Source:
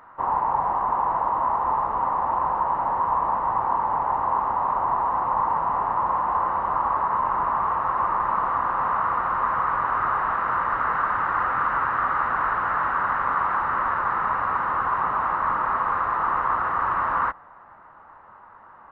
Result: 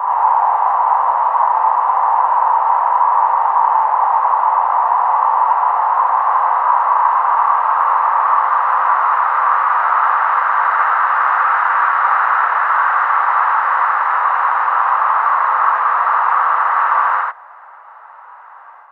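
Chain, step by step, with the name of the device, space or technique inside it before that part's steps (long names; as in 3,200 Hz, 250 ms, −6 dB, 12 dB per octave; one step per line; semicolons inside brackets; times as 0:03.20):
ghost voice (reversed playback; convolution reverb RT60 1.2 s, pre-delay 60 ms, DRR −5 dB; reversed playback; high-pass filter 640 Hz 24 dB per octave)
level +4 dB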